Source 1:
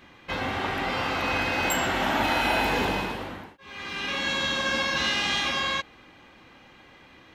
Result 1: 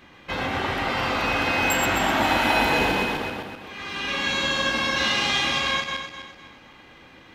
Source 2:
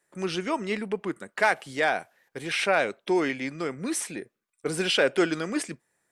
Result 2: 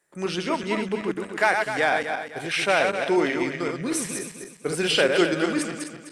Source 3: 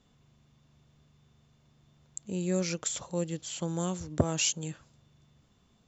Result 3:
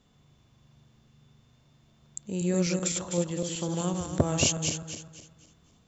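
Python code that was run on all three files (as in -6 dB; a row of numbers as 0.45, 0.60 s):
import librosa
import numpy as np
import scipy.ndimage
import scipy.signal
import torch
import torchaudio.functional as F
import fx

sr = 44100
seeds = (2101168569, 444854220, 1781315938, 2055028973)

y = fx.reverse_delay_fb(x, sr, ms=127, feedback_pct=57, wet_db=-4.5)
y = y * 10.0 ** (1.5 / 20.0)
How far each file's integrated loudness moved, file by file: +3.0, +3.0, +3.5 LU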